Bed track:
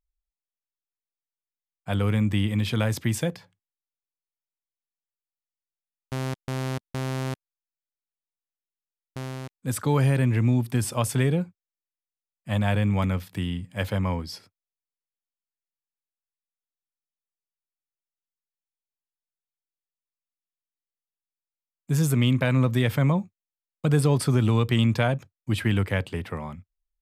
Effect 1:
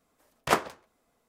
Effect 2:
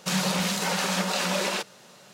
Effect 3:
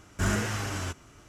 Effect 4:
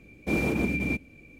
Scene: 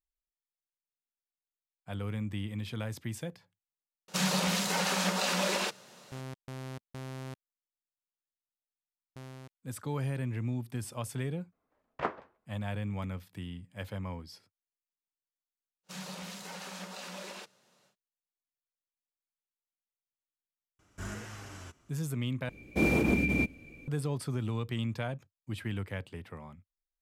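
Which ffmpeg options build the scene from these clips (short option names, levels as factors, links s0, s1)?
-filter_complex "[2:a]asplit=2[s0][s1];[0:a]volume=0.237[s2];[1:a]lowpass=2000[s3];[s2]asplit=2[s4][s5];[s4]atrim=end=22.494[s6];[4:a]atrim=end=1.39[s7];[s5]atrim=start=23.876[s8];[s0]atrim=end=2.13,asetpts=PTS-STARTPTS,volume=0.668,afade=t=in:d=0.004:c=hsin,afade=t=out:st=2.126:d=0.004:c=hsin,adelay=4080[s9];[s3]atrim=end=1.28,asetpts=PTS-STARTPTS,volume=0.376,afade=t=in:d=0.004:c=hsin,afade=t=out:st=1.276:d=0.004:c=hsin,adelay=11520[s10];[s1]atrim=end=2.13,asetpts=PTS-STARTPTS,volume=0.141,afade=t=in:d=0.1,afade=t=out:st=2.03:d=0.1,adelay=15830[s11];[3:a]atrim=end=1.28,asetpts=PTS-STARTPTS,volume=0.211,afade=t=in:d=0.004:c=hsin,afade=t=out:st=1.276:d=0.004:c=hsin,adelay=20790[s12];[s6][s7]acrossfade=d=0.004:c1=hsin:c2=hsin[s13];[s13][s8]acrossfade=d=0.004:c1=hsin:c2=hsin[s14];[s14][s9][s10][s11][s12]amix=inputs=5:normalize=0"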